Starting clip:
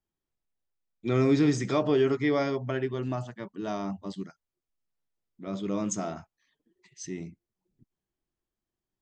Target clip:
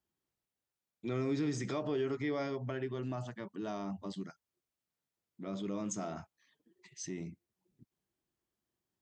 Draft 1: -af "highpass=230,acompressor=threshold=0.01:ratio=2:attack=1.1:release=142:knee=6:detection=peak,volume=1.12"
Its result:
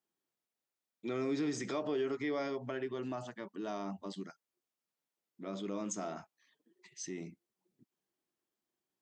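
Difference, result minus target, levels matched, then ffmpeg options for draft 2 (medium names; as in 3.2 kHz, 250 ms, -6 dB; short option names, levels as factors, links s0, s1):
125 Hz band -7.0 dB
-af "highpass=74,acompressor=threshold=0.01:ratio=2:attack=1.1:release=142:knee=6:detection=peak,volume=1.12"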